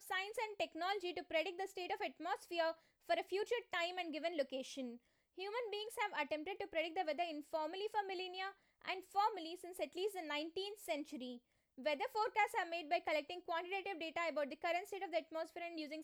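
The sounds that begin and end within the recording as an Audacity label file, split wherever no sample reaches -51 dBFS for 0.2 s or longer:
3.090000	4.960000	sound
5.380000	8.510000	sound
8.820000	11.370000	sound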